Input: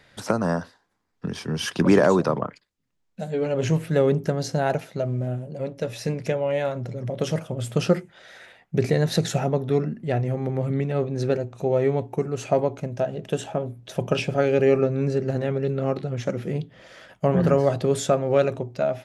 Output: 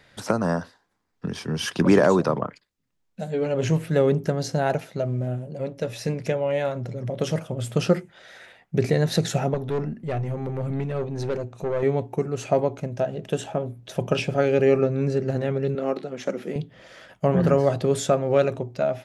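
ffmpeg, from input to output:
ffmpeg -i in.wav -filter_complex "[0:a]asettb=1/sr,asplit=3[link_01][link_02][link_03];[link_01]atrim=end=9.544[link_04];[link_02]atrim=start=9.54:end=11.83,asetpts=PTS-STARTPTS,afade=type=in:duration=0.004:curve=qsin,afade=type=out:start_time=2.286:duration=0.004:curve=qsin,aeval=exprs='(tanh(10*val(0)+0.3)-tanh(0.3))/10':channel_layout=same[link_05];[link_03]atrim=start=11.826[link_06];[link_04][link_05]acrossfade=duration=0.004:curve1=hsin:curve2=qsin[link_07];[link_07][link_06]acrossfade=duration=0.004:curve1=qsin:curve2=hsin,asettb=1/sr,asplit=3[link_08][link_09][link_10];[link_08]atrim=end=15.754[link_11];[link_09]atrim=start=15.75:end=16.56,asetpts=PTS-STARTPTS,afade=type=in:duration=0.004:curve=qsin,afade=type=out:start_time=0.806:duration=0.004:curve=qsin,highpass=frequency=210:width=0.5412,highpass=frequency=210:width=1.3066[link_12];[link_10]atrim=start=16.556[link_13];[link_11][link_12]acrossfade=duration=0.004:curve1=hsin:curve2=qsin[link_14];[link_14][link_13]acrossfade=duration=0.004:curve1=qsin:curve2=hsin" out.wav

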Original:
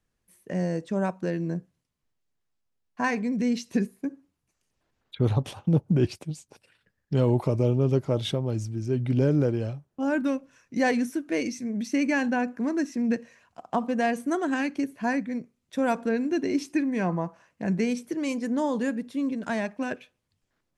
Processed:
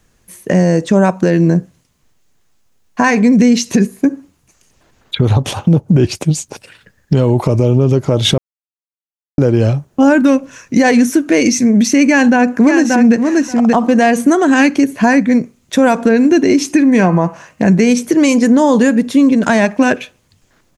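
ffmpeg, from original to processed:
ffmpeg -i in.wav -filter_complex "[0:a]asplit=2[link_01][link_02];[link_02]afade=type=in:start_time=12.08:duration=0.01,afade=type=out:start_time=13.15:duration=0.01,aecho=0:1:580|1160:0.446684|0.0446684[link_03];[link_01][link_03]amix=inputs=2:normalize=0,asettb=1/sr,asplit=3[link_04][link_05][link_06];[link_04]atrim=end=16.934[link_07];[link_05]atrim=start=16.93:end=17.68,asetpts=PTS-STARTPTS,afade=type=in:duration=0.004:curve=qsin,afade=type=out:start_time=0.746:duration=0.004:curve=qsin,bandreject=frequency=154.6:width_type=h:width=4,bandreject=frequency=309.2:width_type=h:width=4,bandreject=frequency=463.8:width_type=h:width=4,bandreject=frequency=618.4:width_type=h:width=4,bandreject=frequency=773:width_type=h:width=4,bandreject=frequency=927.6:width_type=h:width=4,bandreject=frequency=1082.2:width_type=h:width=4,bandreject=frequency=1236.8:width_type=h:width=4,bandreject=frequency=1391.4:width_type=h:width=4,bandreject=frequency=1546:width_type=h:width=4,bandreject=frequency=1700.6:width_type=h:width=4,bandreject=frequency=1855.2:width_type=h:width=4,bandreject=frequency=2009.8:width_type=h:width=4,bandreject=frequency=2164.4:width_type=h:width=4,bandreject=frequency=2319:width_type=h:width=4,bandreject=frequency=2473.6:width_type=h:width=4,bandreject=frequency=2628.2:width_type=h:width=4,bandreject=frequency=2782.8:width_type=h:width=4,bandreject=frequency=2937.4:width_type=h:width=4,bandreject=frequency=3092:width_type=h:width=4[link_08];[link_06]atrim=start=17.676[link_09];[link_07][link_08]acrossfade=duration=0.004:curve1=hsin:curve2=qsin[link_10];[link_10][link_09]acrossfade=duration=0.004:curve1=qsin:curve2=hsin,asplit=3[link_11][link_12][link_13];[link_11]atrim=end=8.38,asetpts=PTS-STARTPTS,afade=type=out:start_time=8.376:duration=0.004:curve=hsin[link_14];[link_12]atrim=start=8.38:end=9.38,asetpts=PTS-STARTPTS,volume=0[link_15];[link_13]atrim=start=9.38,asetpts=PTS-STARTPTS,afade=type=in:duration=0.004:curve=hsin[link_16];[link_14][link_15][link_16]concat=n=3:v=0:a=1,acompressor=threshold=-29dB:ratio=3,equalizer=frequency=6600:width_type=o:width=0.28:gain=5.5,alimiter=level_in=23dB:limit=-1dB:release=50:level=0:latency=1,volume=-1dB" out.wav

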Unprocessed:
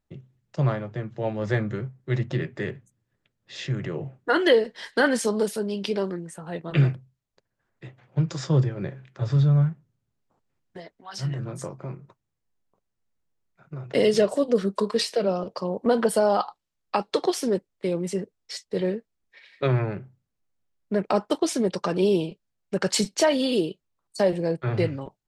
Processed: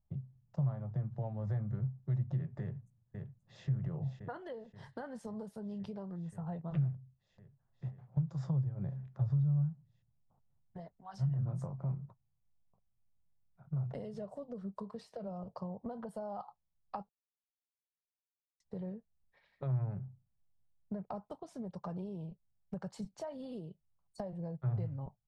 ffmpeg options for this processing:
ffmpeg -i in.wav -filter_complex "[0:a]asplit=2[link_01][link_02];[link_02]afade=type=in:start_time=2.61:duration=0.01,afade=type=out:start_time=3.66:duration=0.01,aecho=0:1:530|1060|1590|2120|2650|3180|3710|4240|4770|5300|5830|6360:0.334965|0.267972|0.214378|0.171502|0.137202|0.109761|0.0878092|0.0702473|0.0561979|0.0449583|0.0359666|0.0287733[link_03];[link_01][link_03]amix=inputs=2:normalize=0,asplit=3[link_04][link_05][link_06];[link_04]atrim=end=17.09,asetpts=PTS-STARTPTS,afade=type=out:start_time=17.086:duration=0.004:curve=hsin[link_07];[link_05]atrim=start=17.09:end=18.6,asetpts=PTS-STARTPTS,volume=0[link_08];[link_06]atrim=start=18.6,asetpts=PTS-STARTPTS,afade=type=in:duration=0.004:curve=hsin[link_09];[link_07][link_08][link_09]concat=n=3:v=0:a=1,equalizer=frequency=1600:width=1.3:gain=-3.5,acompressor=threshold=-32dB:ratio=6,firequalizer=gain_entry='entry(140,0);entry(320,-19);entry(730,-7);entry(2400,-25)':delay=0.05:min_phase=1,volume=3dB" out.wav

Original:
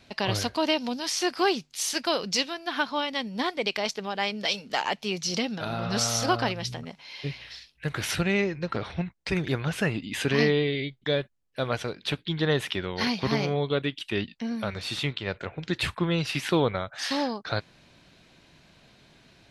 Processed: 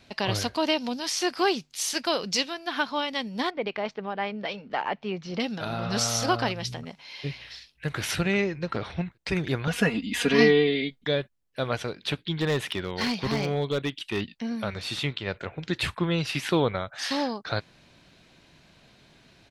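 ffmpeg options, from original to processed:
ffmpeg -i in.wav -filter_complex "[0:a]asettb=1/sr,asplit=3[link_01][link_02][link_03];[link_01]atrim=end=3.504[link_04];[link_02]atrim=start=3.5:end=5.4,asetpts=PTS-STARTPTS,afade=type=in:duration=0.004:curve=qsin,afade=type=out:start_time=1.896:duration=0.004:curve=qsin,lowpass=1900[link_05];[link_03]atrim=start=5.396[link_06];[link_04][link_05]acrossfade=duration=0.004:curve1=hsin:curve2=qsin[link_07];[link_07][link_06]acrossfade=duration=0.004:curve1=qsin:curve2=hsin,asplit=2[link_08][link_09];[link_09]afade=type=in:start_time=7.57:duration=0.01,afade=type=out:start_time=8:duration=0.01,aecho=0:1:390|780|1170:0.177828|0.0533484|0.0160045[link_10];[link_08][link_10]amix=inputs=2:normalize=0,asettb=1/sr,asplit=3[link_11][link_12][link_13];[link_11]atrim=end=9.674[link_14];[link_12]atrim=start=9.67:end=11.07,asetpts=PTS-STARTPTS,afade=type=in:duration=0.004:curve=qsin,afade=type=out:start_time=1.396:duration=0.004:curve=qsin,aecho=1:1:4.2:0.99,atrim=end_sample=61740[link_15];[link_13]atrim=start=11.066[link_16];[link_14][link_15]acrossfade=duration=0.004:curve1=hsin:curve2=qsin[link_17];[link_17][link_16]acrossfade=duration=0.004:curve1=qsin:curve2=hsin,asettb=1/sr,asplit=3[link_18][link_19][link_20];[link_18]atrim=end=12.364[link_21];[link_19]atrim=start=12.36:end=14.21,asetpts=PTS-STARTPTS,afade=type=in:duration=0.004:curve=qsin,afade=type=out:start_time=1.846:duration=0.004:curve=qsin,asoftclip=type=hard:threshold=-20.5dB[link_22];[link_20]atrim=start=14.206[link_23];[link_21][link_22]acrossfade=duration=0.004:curve1=hsin:curve2=qsin[link_24];[link_24][link_23]acrossfade=duration=0.004:curve1=qsin:curve2=hsin" out.wav

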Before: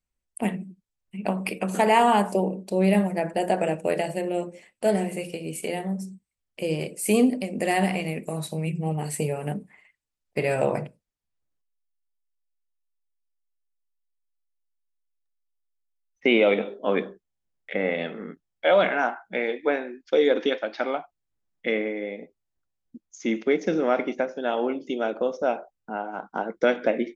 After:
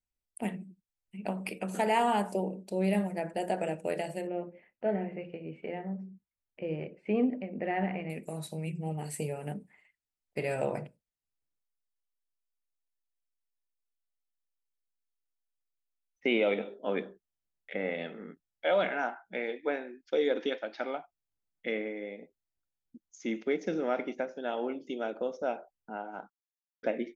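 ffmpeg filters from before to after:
ffmpeg -i in.wav -filter_complex "[0:a]asettb=1/sr,asplit=3[link_01][link_02][link_03];[link_01]atrim=end=4.274[link_04];[link_02]atrim=start=4.27:end=8.1,asetpts=PTS-STARTPTS,afade=type=in:duration=0.004:curve=qsin,afade=type=out:start_time=3.826:duration=0.004:curve=qsin,lowpass=frequency=2300:width=0.5412,lowpass=frequency=2300:width=1.3066[link_05];[link_03]atrim=start=8.096[link_06];[link_04][link_05]acrossfade=duration=0.004:curve1=hsin:curve2=qsin[link_07];[link_07][link_06]acrossfade=duration=0.004:curve1=qsin:curve2=hsin,asplit=3[link_08][link_09][link_10];[link_08]atrim=end=26.3,asetpts=PTS-STARTPTS,afade=type=out:start_time=26.296:duration=0.004:curve=hsin[link_11];[link_09]atrim=start=26.3:end=26.83,asetpts=PTS-STARTPTS,volume=0[link_12];[link_10]atrim=start=26.83,asetpts=PTS-STARTPTS,afade=type=in:duration=0.004:curve=hsin[link_13];[link_11][link_12][link_13]concat=n=3:v=0:a=1,bandreject=frequency=1100:width=11,volume=-8dB" out.wav

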